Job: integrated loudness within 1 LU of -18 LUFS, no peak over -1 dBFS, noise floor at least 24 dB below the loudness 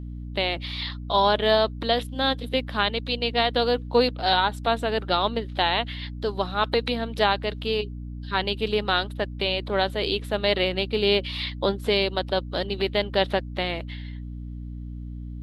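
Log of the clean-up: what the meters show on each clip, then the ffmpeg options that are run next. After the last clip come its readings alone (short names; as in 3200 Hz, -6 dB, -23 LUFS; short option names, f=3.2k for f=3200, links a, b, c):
hum 60 Hz; harmonics up to 300 Hz; hum level -32 dBFS; loudness -24.5 LUFS; peak -6.5 dBFS; loudness target -18.0 LUFS
-> -af "bandreject=f=60:t=h:w=4,bandreject=f=120:t=h:w=4,bandreject=f=180:t=h:w=4,bandreject=f=240:t=h:w=4,bandreject=f=300:t=h:w=4"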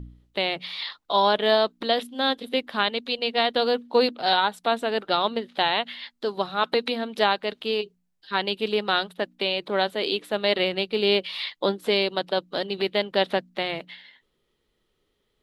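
hum none; loudness -25.0 LUFS; peak -6.5 dBFS; loudness target -18.0 LUFS
-> -af "volume=7dB,alimiter=limit=-1dB:level=0:latency=1"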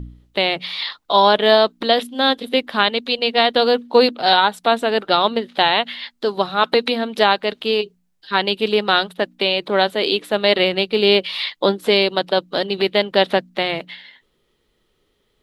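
loudness -18.0 LUFS; peak -1.0 dBFS; noise floor -67 dBFS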